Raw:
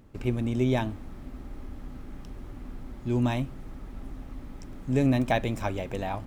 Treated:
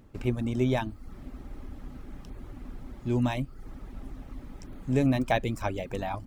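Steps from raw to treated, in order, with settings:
reverb reduction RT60 0.53 s

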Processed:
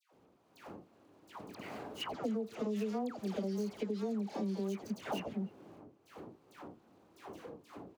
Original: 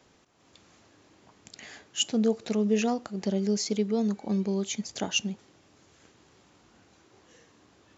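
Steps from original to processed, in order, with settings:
running median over 25 samples
transient designer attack −3 dB, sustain +2 dB
noise gate with hold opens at −52 dBFS
all-pass dispersion lows, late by 127 ms, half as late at 1,200 Hz
downward compressor, threshold −31 dBFS, peak gain reduction 10.5 dB
high-pass filter 180 Hz 6 dB per octave
far-end echo of a speakerphone 300 ms, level −28 dB
multiband upward and downward compressor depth 70%

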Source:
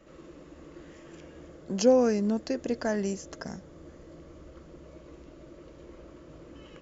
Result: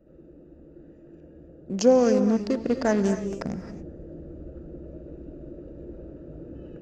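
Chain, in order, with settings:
adaptive Wiener filter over 41 samples
reverb whose tail is shaped and stops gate 300 ms rising, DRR 9 dB
speech leveller within 4 dB 2 s
level +5 dB

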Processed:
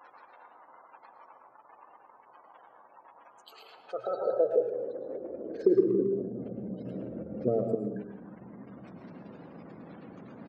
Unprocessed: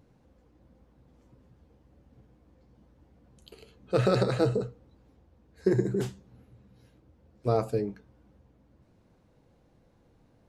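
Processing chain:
converter with a step at zero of −38.5 dBFS
mains-hum notches 50/100/150/200 Hz
gate on every frequency bin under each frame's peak −20 dB strong
0:04.25–0:07.75: low shelf with overshoot 720 Hz +7.5 dB, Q 3
downward compressor 3 to 1, threshold −23 dBFS, peak gain reduction 11.5 dB
high-pass filter sweep 960 Hz → 190 Hz, 0:03.46–0:06.64
far-end echo of a speakerphone 110 ms, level −18 dB
dense smooth reverb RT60 0.84 s, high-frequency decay 0.5×, pre-delay 95 ms, DRR 5 dB
level −5.5 dB

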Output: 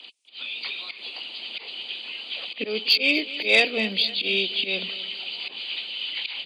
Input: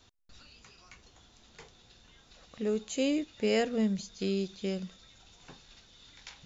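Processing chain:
hearing-aid frequency compression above 2,100 Hz 1.5 to 1
volume swells 132 ms
Bessel high-pass filter 370 Hz, order 8
high shelf with overshoot 2,000 Hz +8 dB, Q 3
in parallel at −0.5 dB: downward compressor, threshold −42 dBFS, peak gain reduction 18.5 dB
on the sum: harmonic and percussive parts rebalanced percussive +8 dB
automatic gain control gain up to 6 dB
soft clipping −6.5 dBFS, distortion −22 dB
on a send: repeating echo 249 ms, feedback 51%, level −16.5 dB

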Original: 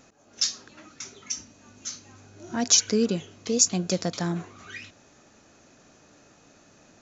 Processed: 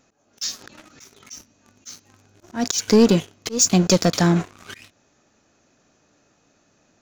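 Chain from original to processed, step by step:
leveller curve on the samples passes 3
volume swells 224 ms
0:00.47–0:01.30: background raised ahead of every attack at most 73 dB per second

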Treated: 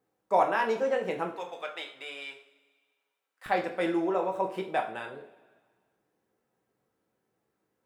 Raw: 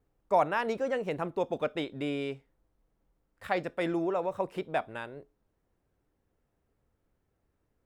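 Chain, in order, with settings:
high-pass filter 230 Hz 12 dB per octave, from 0:01.36 1,000 Hz, from 0:03.46 200 Hz
coupled-rooms reverb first 0.39 s, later 1.7 s, from −18 dB, DRR 1.5 dB

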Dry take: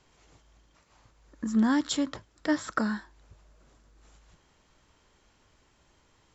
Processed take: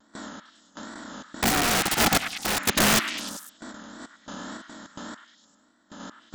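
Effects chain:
compressor on every frequency bin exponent 0.2
noise gate with hold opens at −16 dBFS
output level in coarse steps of 23 dB
wrap-around overflow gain 19.5 dB
0:01.50–0:02.59: ring modulation 500 Hz
tape wow and flutter 110 cents
sample-and-hold tremolo
echo through a band-pass that steps 101 ms, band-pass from 1,600 Hz, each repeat 0.7 octaves, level −5 dB
level +8.5 dB

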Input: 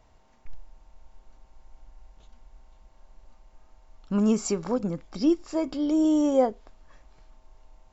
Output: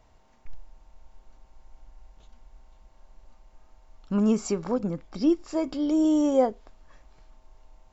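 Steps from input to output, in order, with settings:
0:04.14–0:05.44: high-shelf EQ 5,000 Hz −6 dB

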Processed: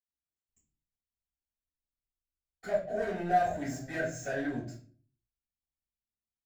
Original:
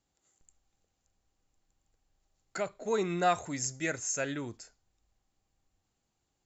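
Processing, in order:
leveller curve on the samples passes 5
0:02.61–0:04.62: hollow resonant body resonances 650/1,600 Hz, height 17 dB, ringing for 25 ms
convolution reverb RT60 0.45 s, pre-delay 76 ms, DRR −60 dB
level +5.5 dB

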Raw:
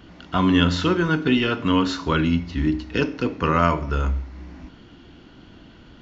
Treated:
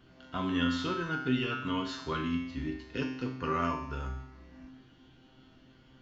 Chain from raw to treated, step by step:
tuned comb filter 130 Hz, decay 0.77 s, harmonics all, mix 90%
level +2 dB

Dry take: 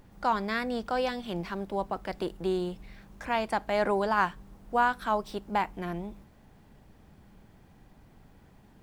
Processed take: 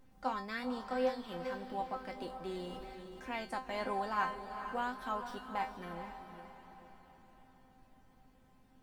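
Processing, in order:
tuned comb filter 260 Hz, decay 0.24 s, harmonics all, mix 90%
feedback delay with all-pass diffusion 454 ms, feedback 48%, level −9 dB
0:02.51–0:03.34: level that may fall only so fast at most 22 dB per second
level +3 dB

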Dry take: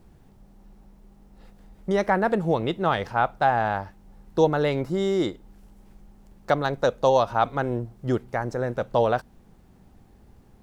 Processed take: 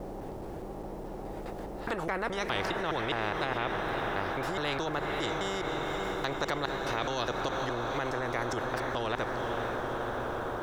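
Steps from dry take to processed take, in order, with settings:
slices reordered back to front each 208 ms, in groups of 3
tilt shelving filter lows +8.5 dB
in parallel at −1 dB: downward compressor, threshold −30 dBFS, peak gain reduction 19.5 dB
on the sum: feedback delay with all-pass diffusion 509 ms, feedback 68%, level −12 dB
brickwall limiter −14 dBFS, peak gain reduction 11.5 dB
low shelf with overshoot 270 Hz −8 dB, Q 3
every bin compressed towards the loudest bin 4 to 1
level −5.5 dB

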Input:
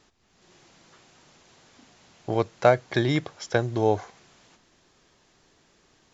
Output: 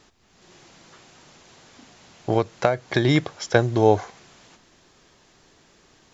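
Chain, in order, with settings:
0:02.37–0:03.05: downward compressor 12 to 1, threshold −21 dBFS, peak gain reduction 10 dB
level +5.5 dB

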